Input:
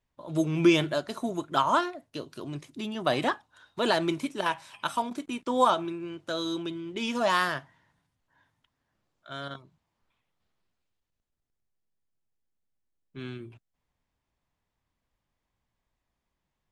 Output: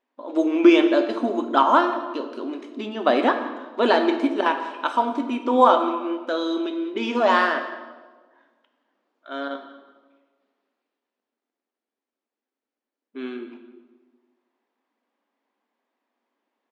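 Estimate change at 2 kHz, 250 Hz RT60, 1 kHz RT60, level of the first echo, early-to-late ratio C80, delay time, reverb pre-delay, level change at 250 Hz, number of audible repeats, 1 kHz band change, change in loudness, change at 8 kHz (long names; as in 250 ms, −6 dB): +6.0 dB, 1.7 s, 1.2 s, −18.5 dB, 10.0 dB, 182 ms, 4 ms, +8.0 dB, 1, +7.5 dB, +7.0 dB, can't be measured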